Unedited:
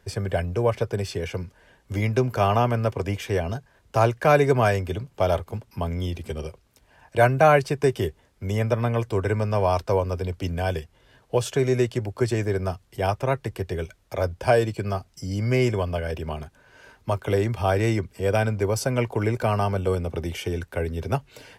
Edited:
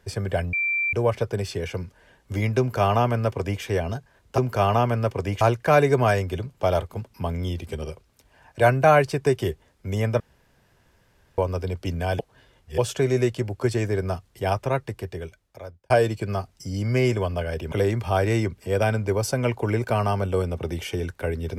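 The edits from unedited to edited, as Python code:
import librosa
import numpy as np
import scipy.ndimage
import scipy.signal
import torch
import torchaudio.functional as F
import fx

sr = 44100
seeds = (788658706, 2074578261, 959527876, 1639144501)

y = fx.edit(x, sr, fx.insert_tone(at_s=0.53, length_s=0.4, hz=2350.0, db=-21.0),
    fx.duplicate(start_s=2.19, length_s=1.03, to_s=3.98),
    fx.room_tone_fill(start_s=8.77, length_s=1.18),
    fx.reverse_span(start_s=10.76, length_s=0.59),
    fx.fade_out_span(start_s=13.23, length_s=1.24),
    fx.cut(start_s=16.29, length_s=0.96), tone=tone)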